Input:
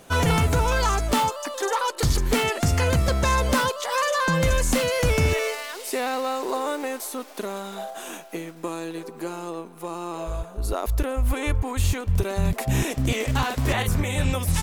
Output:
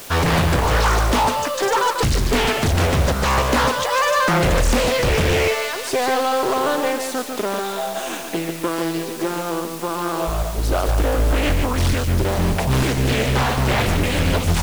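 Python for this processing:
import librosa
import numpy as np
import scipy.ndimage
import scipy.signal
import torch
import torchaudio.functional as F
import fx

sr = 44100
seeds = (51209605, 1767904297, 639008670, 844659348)

p1 = scipy.signal.sosfilt(scipy.signal.butter(2, 7400.0, 'lowpass', fs=sr, output='sos'), x)
p2 = fx.hum_notches(p1, sr, base_hz=50, count=3)
p3 = fx.rider(p2, sr, range_db=3, speed_s=0.5)
p4 = p2 + (p3 * 10.0 ** (1.0 / 20.0))
p5 = np.clip(p4, -10.0 ** (-14.0 / 20.0), 10.0 ** (-14.0 / 20.0))
p6 = fx.quant_dither(p5, sr, seeds[0], bits=6, dither='triangular')
p7 = p6 + fx.echo_single(p6, sr, ms=145, db=-6.0, dry=0)
y = fx.doppler_dist(p7, sr, depth_ms=0.84)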